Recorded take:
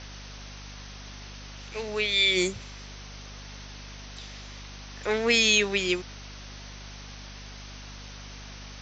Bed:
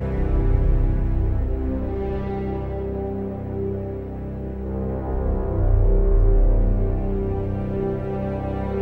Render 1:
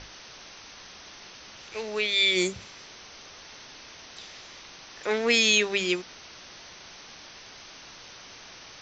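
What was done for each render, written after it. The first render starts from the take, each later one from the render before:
mains-hum notches 50/100/150/200/250 Hz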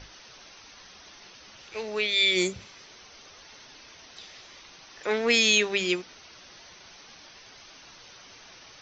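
broadband denoise 6 dB, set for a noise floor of −47 dBFS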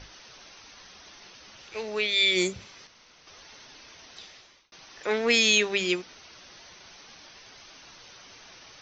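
0:02.87–0:03.27: fill with room tone
0:04.21–0:04.72: fade out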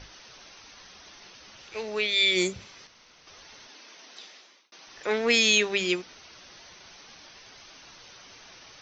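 0:03.67–0:04.87: high-pass filter 210 Hz 24 dB per octave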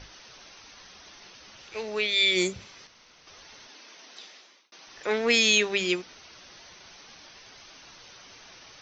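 no processing that can be heard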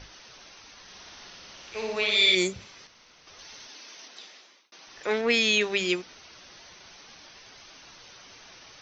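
0:00.82–0:02.35: flutter between parallel walls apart 10 metres, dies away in 1.1 s
0:03.39–0:04.08: high-shelf EQ 3,900 Hz +7.5 dB
0:05.21–0:05.61: high-frequency loss of the air 100 metres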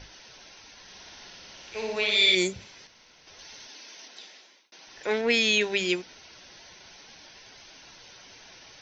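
notch filter 1,200 Hz, Q 6.3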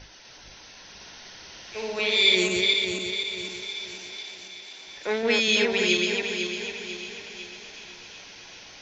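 feedback delay that plays each chunk backwards 249 ms, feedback 65%, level −2.5 dB
delay with a high-pass on its return 375 ms, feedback 76%, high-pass 1,700 Hz, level −15 dB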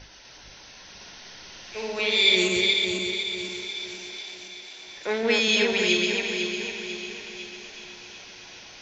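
four-comb reverb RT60 2.9 s, combs from 32 ms, DRR 9.5 dB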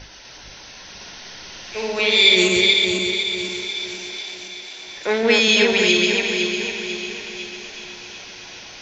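level +6.5 dB
brickwall limiter −2 dBFS, peak gain reduction 2.5 dB

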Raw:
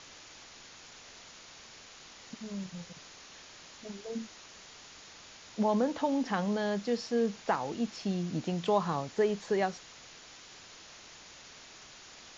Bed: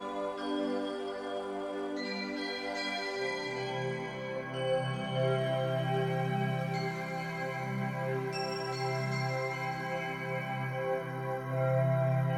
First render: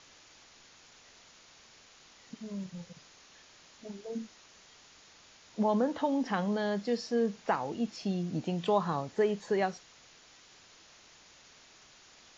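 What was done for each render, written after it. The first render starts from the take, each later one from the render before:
noise reduction from a noise print 6 dB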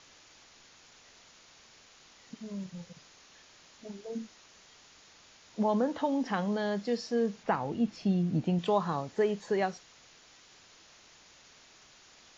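0:07.43–0:08.59: bass and treble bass +7 dB, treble −6 dB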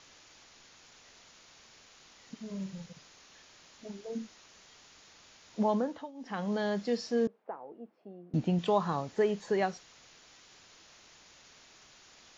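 0:02.46–0:02.86: flutter between parallel walls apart 7.1 metres, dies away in 0.33 s
0:05.69–0:06.57: duck −22 dB, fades 0.43 s linear
0:07.27–0:08.34: four-pole ladder band-pass 590 Hz, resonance 25%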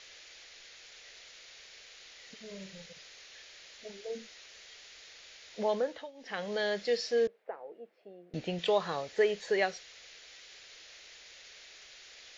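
octave-band graphic EQ 125/250/500/1,000/2,000/4,000 Hz −9/−11/+7/−8/+8/+6 dB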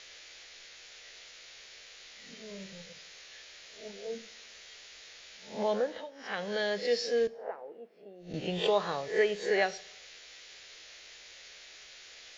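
peak hold with a rise ahead of every peak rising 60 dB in 0.38 s
dense smooth reverb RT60 0.84 s, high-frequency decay 0.9×, DRR 17.5 dB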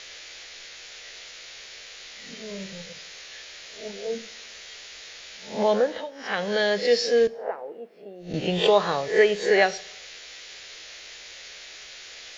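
level +8.5 dB

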